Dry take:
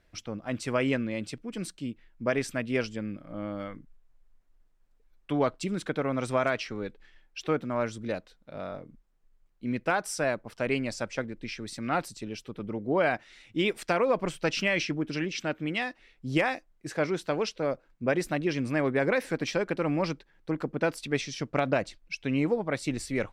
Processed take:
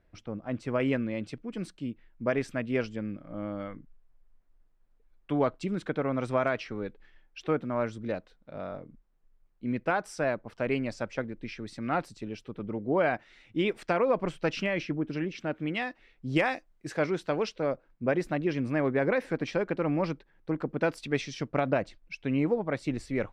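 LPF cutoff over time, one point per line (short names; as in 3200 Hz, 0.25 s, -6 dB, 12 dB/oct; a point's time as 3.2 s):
LPF 6 dB/oct
1100 Hz
from 0.8 s 2100 Hz
from 14.66 s 1200 Hz
from 15.54 s 2700 Hz
from 16.36 s 6300 Hz
from 17.06 s 3400 Hz
from 17.72 s 1900 Hz
from 20.69 s 3800 Hz
from 21.48 s 1900 Hz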